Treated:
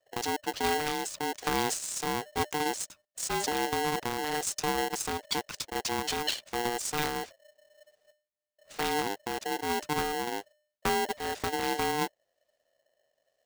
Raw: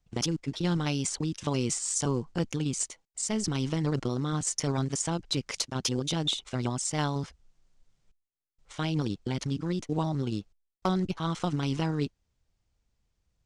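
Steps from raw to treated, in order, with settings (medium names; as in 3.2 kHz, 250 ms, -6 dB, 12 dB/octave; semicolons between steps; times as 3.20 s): rotary cabinet horn 1.1 Hz; polarity switched at an audio rate 600 Hz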